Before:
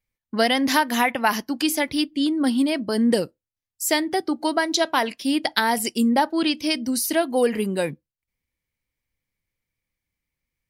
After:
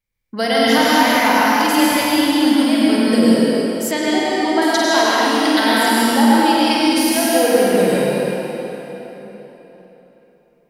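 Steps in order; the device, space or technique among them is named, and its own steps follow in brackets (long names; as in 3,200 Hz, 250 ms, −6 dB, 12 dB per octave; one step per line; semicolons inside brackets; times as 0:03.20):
tunnel (flutter between parallel walls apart 8.4 metres, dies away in 0.5 s; convolution reverb RT60 4.0 s, pre-delay 89 ms, DRR −7.5 dB)
0:03.91–0:04.62: high-frequency loss of the air 98 metres
level −1.5 dB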